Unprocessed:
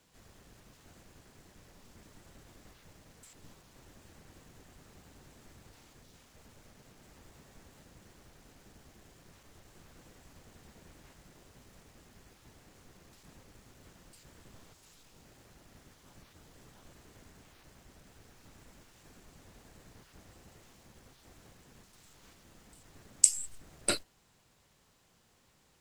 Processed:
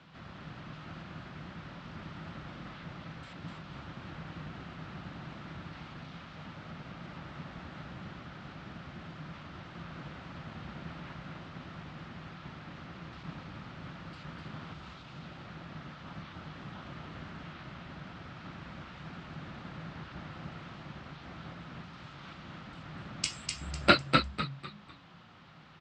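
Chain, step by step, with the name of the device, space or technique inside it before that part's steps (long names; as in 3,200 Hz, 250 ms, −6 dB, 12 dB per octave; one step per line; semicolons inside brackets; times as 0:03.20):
frequency-shifting delay pedal into a guitar cabinet (echo with shifted repeats 250 ms, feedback 32%, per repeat −69 Hz, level −4 dB; loudspeaker in its box 83–3,800 Hz, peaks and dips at 160 Hz +9 dB, 440 Hz −9 dB, 1,300 Hz +7 dB)
level +11.5 dB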